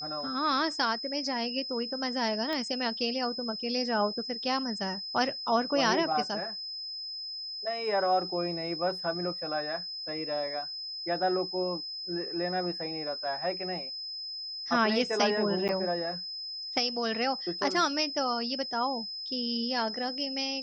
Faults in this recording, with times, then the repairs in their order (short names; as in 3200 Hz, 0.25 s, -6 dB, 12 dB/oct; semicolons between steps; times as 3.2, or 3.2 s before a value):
tone 5100 Hz -36 dBFS
2.53 pop -21 dBFS
15.68–15.69 gap 8.9 ms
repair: de-click; notch 5100 Hz, Q 30; interpolate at 15.68, 8.9 ms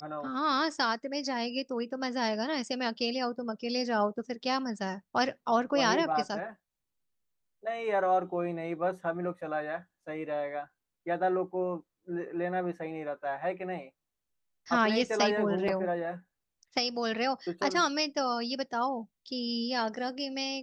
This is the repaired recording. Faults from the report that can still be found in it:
2.53 pop